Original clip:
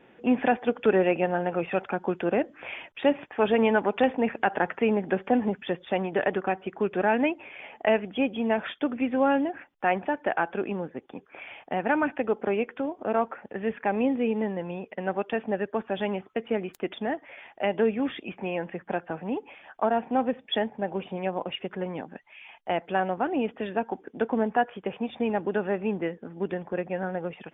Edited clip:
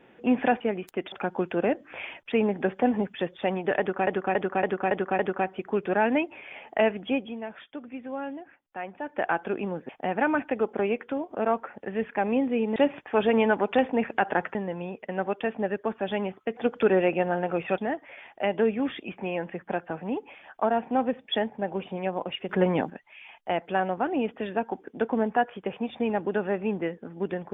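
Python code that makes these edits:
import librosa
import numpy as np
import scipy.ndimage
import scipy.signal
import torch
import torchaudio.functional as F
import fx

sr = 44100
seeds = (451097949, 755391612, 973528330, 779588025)

y = fx.edit(x, sr, fx.swap(start_s=0.6, length_s=1.21, other_s=16.46, other_length_s=0.52),
    fx.move(start_s=3.01, length_s=1.79, to_s=14.44),
    fx.repeat(start_s=6.27, length_s=0.28, count=6),
    fx.fade_down_up(start_s=8.17, length_s=2.17, db=-11.5, fade_s=0.3),
    fx.cut(start_s=10.97, length_s=0.6),
    fx.clip_gain(start_s=21.69, length_s=0.41, db=9.5), tone=tone)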